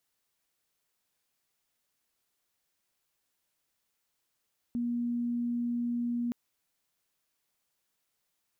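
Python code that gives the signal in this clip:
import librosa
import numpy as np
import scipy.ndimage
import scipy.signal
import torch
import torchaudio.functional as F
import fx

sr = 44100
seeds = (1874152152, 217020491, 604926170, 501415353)

y = 10.0 ** (-28.5 / 20.0) * np.sin(2.0 * np.pi * (239.0 * (np.arange(round(1.57 * sr)) / sr)))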